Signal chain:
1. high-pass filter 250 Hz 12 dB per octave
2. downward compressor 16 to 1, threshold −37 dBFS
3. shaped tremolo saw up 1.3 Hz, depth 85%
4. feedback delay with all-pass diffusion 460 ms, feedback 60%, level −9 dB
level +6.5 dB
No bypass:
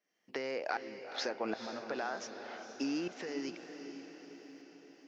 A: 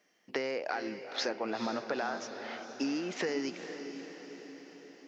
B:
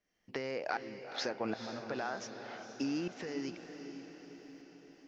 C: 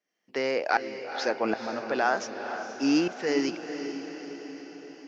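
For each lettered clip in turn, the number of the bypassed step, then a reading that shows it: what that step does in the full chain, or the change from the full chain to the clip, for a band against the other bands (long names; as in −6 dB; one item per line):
3, change in integrated loudness +3.5 LU
1, 125 Hz band +8.0 dB
2, average gain reduction 8.5 dB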